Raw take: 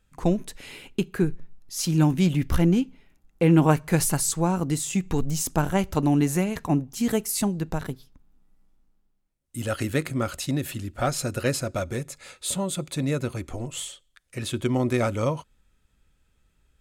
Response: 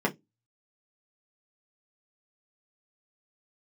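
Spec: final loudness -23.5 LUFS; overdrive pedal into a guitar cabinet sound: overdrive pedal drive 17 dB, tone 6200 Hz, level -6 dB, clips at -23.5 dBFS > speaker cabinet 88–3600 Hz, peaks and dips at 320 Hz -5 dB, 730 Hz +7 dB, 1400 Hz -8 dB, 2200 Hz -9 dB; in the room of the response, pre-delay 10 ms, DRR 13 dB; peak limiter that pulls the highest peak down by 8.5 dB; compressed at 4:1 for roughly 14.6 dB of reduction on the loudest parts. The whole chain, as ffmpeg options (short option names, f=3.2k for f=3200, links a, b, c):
-filter_complex "[0:a]acompressor=threshold=-32dB:ratio=4,alimiter=level_in=3dB:limit=-24dB:level=0:latency=1,volume=-3dB,asplit=2[a][b];[1:a]atrim=start_sample=2205,adelay=10[c];[b][c]afir=irnorm=-1:irlink=0,volume=-24dB[d];[a][d]amix=inputs=2:normalize=0,asplit=2[e][f];[f]highpass=f=720:p=1,volume=17dB,asoftclip=type=tanh:threshold=-23.5dB[g];[e][g]amix=inputs=2:normalize=0,lowpass=f=6.2k:p=1,volume=-6dB,highpass=88,equalizer=f=320:t=q:w=4:g=-5,equalizer=f=730:t=q:w=4:g=7,equalizer=f=1.4k:t=q:w=4:g=-8,equalizer=f=2.2k:t=q:w=4:g=-9,lowpass=f=3.6k:w=0.5412,lowpass=f=3.6k:w=1.3066,volume=13dB"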